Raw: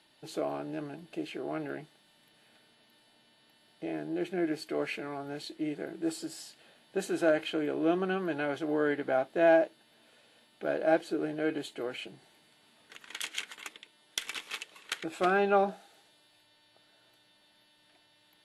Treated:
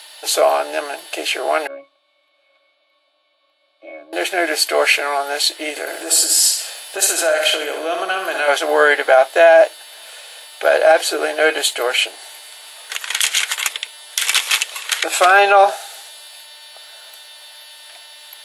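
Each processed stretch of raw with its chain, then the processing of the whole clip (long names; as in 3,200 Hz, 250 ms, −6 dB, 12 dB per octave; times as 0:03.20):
0:01.67–0:04.13: parametric band 3,800 Hz +9 dB 0.55 octaves + resonances in every octave C#, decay 0.16 s
0:05.70–0:08.48: bass and treble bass +5 dB, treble +5 dB + flutter between parallel walls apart 10.8 metres, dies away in 0.57 s + downward compressor 2.5 to 1, threshold −37 dBFS
whole clip: high-pass filter 560 Hz 24 dB per octave; high-shelf EQ 4,800 Hz +11.5 dB; boost into a limiter +23 dB; level −1 dB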